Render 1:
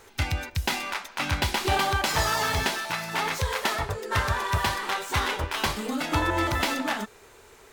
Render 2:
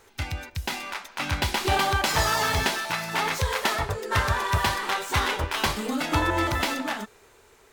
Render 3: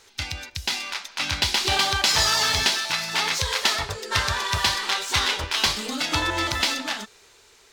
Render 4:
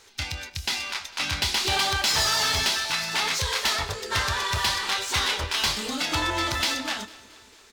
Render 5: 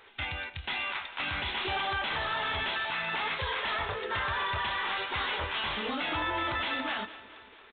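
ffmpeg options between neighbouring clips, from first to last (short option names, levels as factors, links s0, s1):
-af "dynaudnorm=f=230:g=11:m=2,volume=0.631"
-af "equalizer=f=4700:w=0.59:g=14,volume=0.631"
-filter_complex "[0:a]asoftclip=type=tanh:threshold=0.133,asplit=2[s0][s1];[s1]adelay=26,volume=0.2[s2];[s0][s2]amix=inputs=2:normalize=0,aecho=1:1:225|450|675|900|1125:0.0891|0.0517|0.03|0.0174|0.0101"
-filter_complex "[0:a]asplit=2[s0][s1];[s1]highpass=f=720:p=1,volume=2.82,asoftclip=type=tanh:threshold=0.168[s2];[s0][s2]amix=inputs=2:normalize=0,lowpass=f=1900:p=1,volume=0.501,aresample=8000,aresample=44100,alimiter=limit=0.0631:level=0:latency=1:release=43"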